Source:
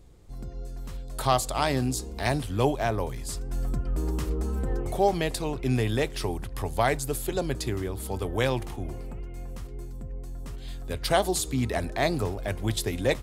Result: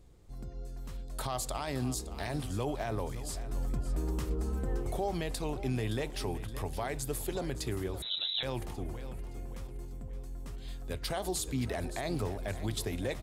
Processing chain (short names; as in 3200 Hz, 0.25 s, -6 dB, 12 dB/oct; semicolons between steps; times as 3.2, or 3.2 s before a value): limiter -19 dBFS, peak gain reduction 10 dB; feedback echo 0.569 s, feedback 43%, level -13.5 dB; 8.02–8.43 inverted band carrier 3900 Hz; gain -5 dB